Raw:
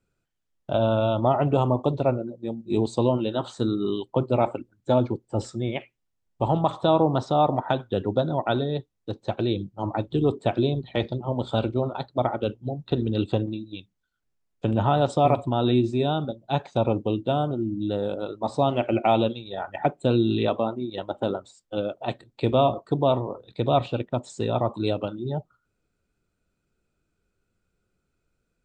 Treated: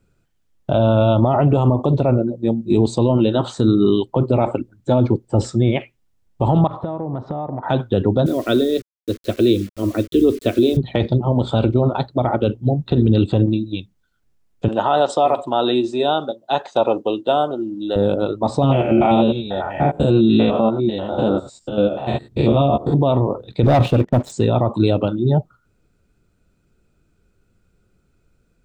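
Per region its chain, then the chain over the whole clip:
6.67–7.63 LPF 1600 Hz + compressor 5:1, threshold -35 dBFS
8.26–10.77 requantised 8-bit, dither none + fixed phaser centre 350 Hz, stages 4
14.68–17.96 HPF 510 Hz + notch 2300 Hz, Q 6.2
18.62–22.94 stepped spectrum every 0.1 s + doubler 14 ms -4 dB
23.63–24.32 high shelf 3200 Hz -8 dB + sample leveller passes 2
whole clip: low shelf 360 Hz +6.5 dB; limiter -14.5 dBFS; gain +8.5 dB

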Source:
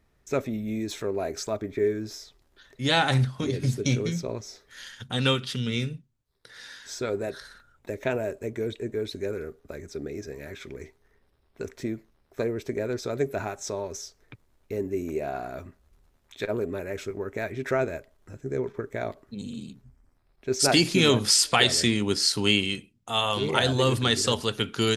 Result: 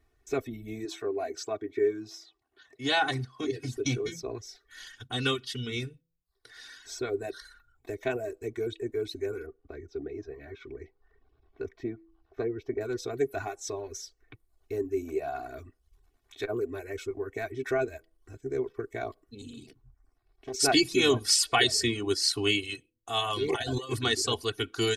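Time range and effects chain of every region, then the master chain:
0.85–3.77 Bessel high-pass 170 Hz + high shelf 9600 Hz -10.5 dB
9.46–12.81 high shelf 2500 Hz -8 dB + upward compressor, threshold -54 dBFS + running mean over 5 samples
19.67–20.54 compressor 2.5:1, threshold -35 dBFS + Doppler distortion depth 0.53 ms
23.48–23.93 notch 1300 Hz, Q 11 + negative-ratio compressor -26 dBFS, ratio -0.5
whole clip: de-hum 164.7 Hz, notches 3; reverb removal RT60 0.56 s; comb 2.7 ms, depth 97%; gain -5.5 dB

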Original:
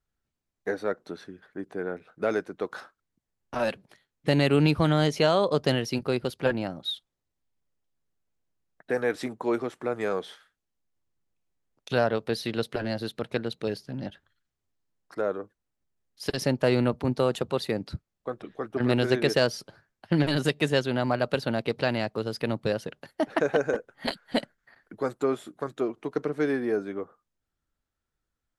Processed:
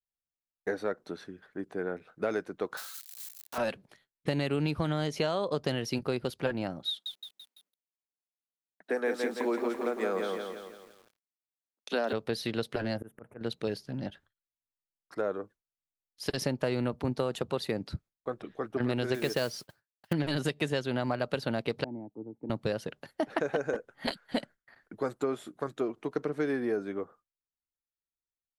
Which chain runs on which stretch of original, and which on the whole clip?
2.77–3.58 switching spikes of -31 dBFS + HPF 880 Hz 6 dB/oct + bell 4100 Hz +5.5 dB 0.23 oct
6.89–12.13 steep high-pass 180 Hz 72 dB/oct + lo-fi delay 0.168 s, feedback 55%, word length 9-bit, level -4 dB
12.97–13.41 auto swell 0.173 s + Butterworth band-stop 4300 Hz, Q 0.52
19.14–20.13 gate -47 dBFS, range -19 dB + modulation noise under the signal 19 dB + mismatched tape noise reduction encoder only
21.84–22.5 vocal tract filter u + three-band expander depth 70%
whole clip: gate with hold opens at -48 dBFS; compressor, threshold -24 dBFS; gain -1.5 dB

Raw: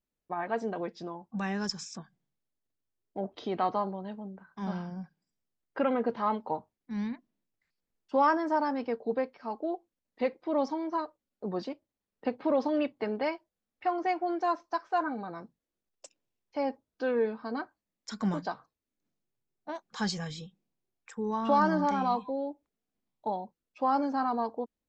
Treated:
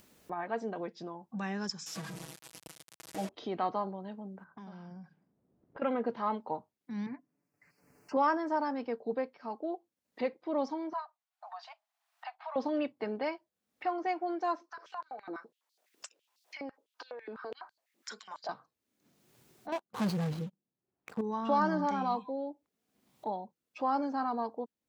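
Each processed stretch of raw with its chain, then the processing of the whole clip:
1.86–3.29 delta modulation 64 kbps, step -37.5 dBFS + comb 6.2 ms, depth 99%
4.44–5.82 compressor 3:1, threshold -54 dBFS + low-pass opened by the level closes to 400 Hz, open at -49 dBFS
7.06–8.17 Butterworth band-stop 3500 Hz, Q 1.6 + high shelf 3300 Hz -8.5 dB + comb 6.9 ms, depth 69%
10.93–12.56 Chebyshev high-pass 660 Hz, order 8 + high shelf 3100 Hz -7.5 dB
14.61–18.49 compressor 12:1, threshold -38 dBFS + stepped high-pass 12 Hz 310–4400 Hz
19.72–21.21 median filter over 25 samples + sample leveller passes 3 + mismatched tape noise reduction decoder only
whole clip: HPF 100 Hz; upward compressor, threshold -35 dBFS; gain -3.5 dB

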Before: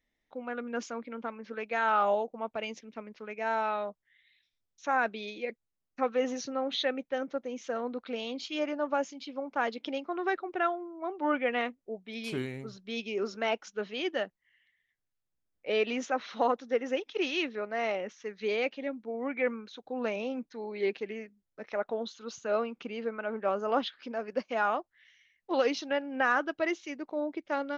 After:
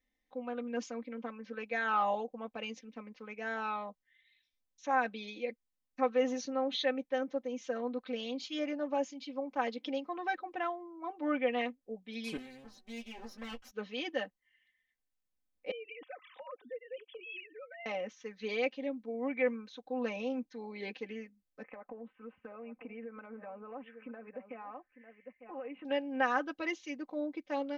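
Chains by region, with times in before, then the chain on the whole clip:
12.37–13.71 minimum comb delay 8.1 ms + compressor 1.5:1, threshold -53 dBFS + doubler 13 ms -8 dB
15.71–17.86 sine-wave speech + tilt shelf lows -4.5 dB, about 840 Hz + compressor 4:1, threshold -41 dBFS
21.63–25.85 steep low-pass 2600 Hz 72 dB/oct + echo 0.899 s -17.5 dB + compressor 4:1, threshold -40 dBFS
whole clip: notch 1400 Hz, Q 7.7; comb 3.9 ms, depth 81%; gain -5.5 dB

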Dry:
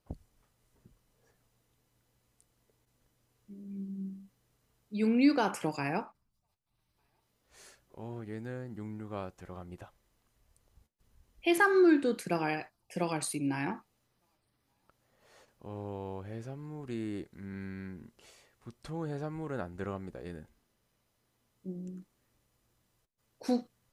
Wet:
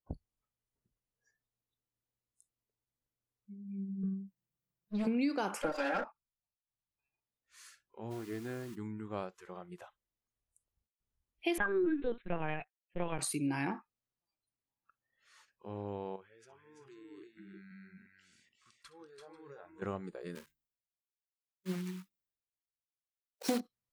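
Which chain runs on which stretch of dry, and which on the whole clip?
4.03–5.07 minimum comb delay 5.9 ms + bell 160 Hz +9.5 dB 1.4 oct + compressor 2:1, threshold -33 dBFS
5.62–6.04 minimum comb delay 3.7 ms + high shelf 9400 Hz -11.5 dB + small resonant body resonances 580/1400 Hz, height 15 dB, ringing for 20 ms
8.1–8.74 comb 2.9 ms, depth 50% + added noise pink -55 dBFS
11.58–13.19 gate -41 dBFS, range -22 dB + LPC vocoder at 8 kHz pitch kept
16.16–19.82 level quantiser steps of 17 dB + tapped delay 66/336/358/385/491 ms -16.5/-4/-12/-18.5/-15 dB
20.35–23.61 block floating point 3-bit + notches 50/100/150/200/250/300/350 Hz + three-band expander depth 70%
whole clip: spectral noise reduction 22 dB; compressor 6:1, threshold -29 dBFS

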